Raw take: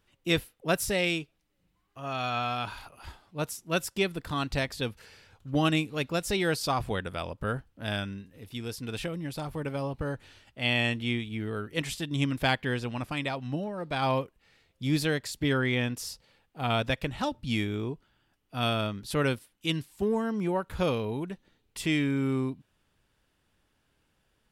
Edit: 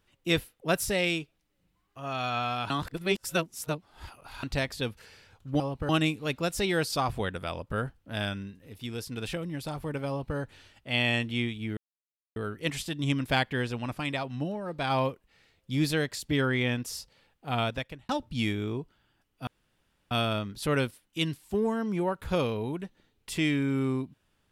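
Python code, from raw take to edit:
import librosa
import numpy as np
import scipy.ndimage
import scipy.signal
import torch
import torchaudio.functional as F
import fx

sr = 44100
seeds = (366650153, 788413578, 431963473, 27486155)

y = fx.edit(x, sr, fx.reverse_span(start_s=2.7, length_s=1.73),
    fx.duplicate(start_s=9.79, length_s=0.29, to_s=5.6),
    fx.insert_silence(at_s=11.48, length_s=0.59),
    fx.fade_out_span(start_s=16.66, length_s=0.55),
    fx.insert_room_tone(at_s=18.59, length_s=0.64), tone=tone)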